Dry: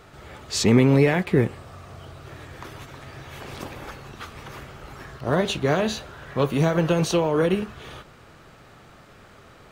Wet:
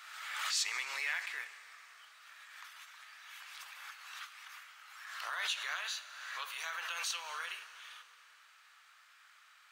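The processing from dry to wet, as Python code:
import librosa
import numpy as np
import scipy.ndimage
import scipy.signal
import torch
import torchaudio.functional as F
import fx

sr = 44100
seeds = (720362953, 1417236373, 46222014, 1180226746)

y = scipy.signal.sosfilt(scipy.signal.butter(4, 1300.0, 'highpass', fs=sr, output='sos'), x)
y = fx.rev_schroeder(y, sr, rt60_s=3.2, comb_ms=38, drr_db=13.0)
y = fx.pre_swell(y, sr, db_per_s=39.0)
y = F.gain(torch.from_numpy(y), -7.5).numpy()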